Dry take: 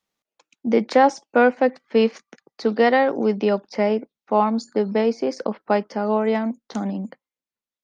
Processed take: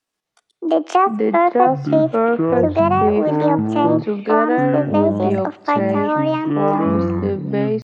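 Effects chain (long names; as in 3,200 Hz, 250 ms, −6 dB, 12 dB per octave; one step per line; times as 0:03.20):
pitch shifter +6 semitones
delay with pitch and tempo change per echo 130 ms, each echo −7 semitones, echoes 3
on a send at −21.5 dB: convolution reverb, pre-delay 3 ms
on the sum: treble cut that deepens with the level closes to 1,300 Hz, closed at −11.5 dBFS
every ending faded ahead of time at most 600 dB per second
level +1.5 dB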